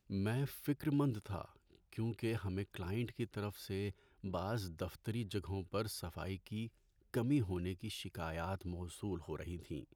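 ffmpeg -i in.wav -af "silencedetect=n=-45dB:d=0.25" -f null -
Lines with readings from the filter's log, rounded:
silence_start: 1.45
silence_end: 1.93 | silence_duration: 0.48
silence_start: 3.91
silence_end: 4.24 | silence_duration: 0.33
silence_start: 6.67
silence_end: 7.14 | silence_duration: 0.47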